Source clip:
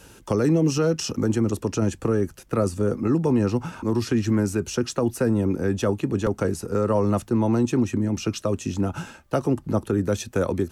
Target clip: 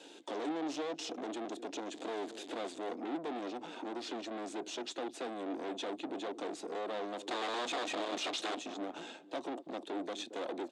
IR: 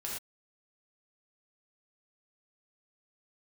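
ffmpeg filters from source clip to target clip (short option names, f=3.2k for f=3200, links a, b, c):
-filter_complex "[0:a]asettb=1/sr,asplit=3[a][b][c];[a]atrim=end=1.944[d];[b]atrim=start=1.94:end=2.78,asetpts=PTS-STARTPTS,afade=t=in:d=0.004:c=qsin,afade=t=out:st=0.836:d=0.004:c=qsin,aeval=exprs='val(0)+0.5*0.0178*sgn(val(0))':c=same[e];[c]atrim=start=2.776[f];[d][e]acrossfade=d=0.004:c1=hsin:c2=qsin[g];[g][f]acrossfade=d=0.004:c1=qsin:c2=hsin,equalizer=f=1.3k:w=2:g=-8,asplit=2[h][i];[i]acompressor=threshold=-32dB:ratio=6,volume=-2.5dB[j];[h][j]amix=inputs=2:normalize=0,asettb=1/sr,asplit=3[k][l][m];[k]atrim=end=7.274[n];[l]atrim=start=7.27:end=8.59,asetpts=PTS-STARTPTS,afade=t=in:d=0.004:c=qsin,afade=t=out:st=1.316:d=0.004:c=qsin,aeval=exprs='0.299*sin(PI/2*5.01*val(0)/0.299)':c=same[o];[m]atrim=start=8.586[p];[n][o]acrossfade=d=0.004:c1=hsin:c2=qsin[q];[q][p]acrossfade=d=0.004:c1=qsin:c2=hsin,asplit=2[r][s];[s]adelay=225,lowpass=f=880:p=1,volume=-21dB,asplit=2[t][u];[u]adelay=225,lowpass=f=880:p=1,volume=0.47,asplit=2[v][w];[w]adelay=225,lowpass=f=880:p=1,volume=0.47[x];[t][v][x]amix=inputs=3:normalize=0[y];[r][y]amix=inputs=2:normalize=0,aeval=exprs='(tanh(31.6*val(0)+0.5)-tanh(0.5))/31.6':c=same,highpass=f=290:w=0.5412,highpass=f=290:w=1.3066,equalizer=f=300:t=q:w=4:g=8,equalizer=f=710:t=q:w=4:g=7,equalizer=f=3.6k:t=q:w=4:g=10,equalizer=f=5.7k:t=q:w=4:g=-7,lowpass=f=7.4k:w=0.5412,lowpass=f=7.4k:w=1.3066,volume=-7dB"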